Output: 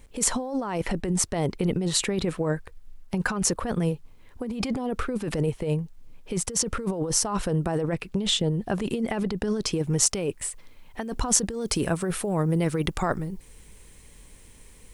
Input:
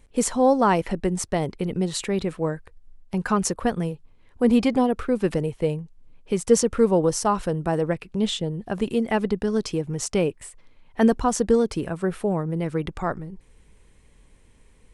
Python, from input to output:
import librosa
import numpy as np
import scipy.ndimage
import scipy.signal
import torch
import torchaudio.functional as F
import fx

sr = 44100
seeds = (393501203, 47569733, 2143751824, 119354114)

y = fx.over_compress(x, sr, threshold_db=-26.0, ratio=-1.0)
y = fx.quant_dither(y, sr, seeds[0], bits=12, dither='none')
y = fx.high_shelf(y, sr, hz=4400.0, db=fx.steps((0.0, 2.0), (9.77, 7.0), (11.61, 12.0)))